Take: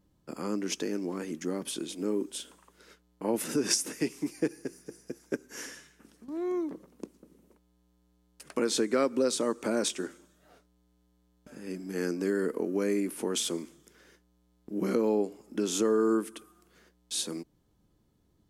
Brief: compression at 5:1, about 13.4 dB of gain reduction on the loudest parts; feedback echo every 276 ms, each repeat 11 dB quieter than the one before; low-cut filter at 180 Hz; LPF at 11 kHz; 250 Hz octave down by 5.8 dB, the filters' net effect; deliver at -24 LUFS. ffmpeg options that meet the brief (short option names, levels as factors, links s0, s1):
-af "highpass=180,lowpass=11000,equalizer=f=250:t=o:g=-7,acompressor=threshold=0.0126:ratio=5,aecho=1:1:276|552|828:0.282|0.0789|0.0221,volume=8.41"